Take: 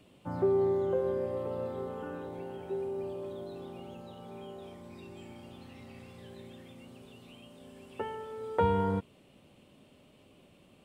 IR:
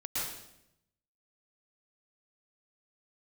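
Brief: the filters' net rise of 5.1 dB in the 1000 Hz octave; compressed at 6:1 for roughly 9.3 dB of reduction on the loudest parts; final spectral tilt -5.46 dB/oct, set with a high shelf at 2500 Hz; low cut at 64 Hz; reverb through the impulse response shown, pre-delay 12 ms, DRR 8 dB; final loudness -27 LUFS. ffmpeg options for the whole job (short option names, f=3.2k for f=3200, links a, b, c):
-filter_complex "[0:a]highpass=64,equalizer=f=1k:t=o:g=5,highshelf=f=2.5k:g=5,acompressor=threshold=-29dB:ratio=6,asplit=2[a][b];[1:a]atrim=start_sample=2205,adelay=12[c];[b][c]afir=irnorm=-1:irlink=0,volume=-12.5dB[d];[a][d]amix=inputs=2:normalize=0,volume=10.5dB"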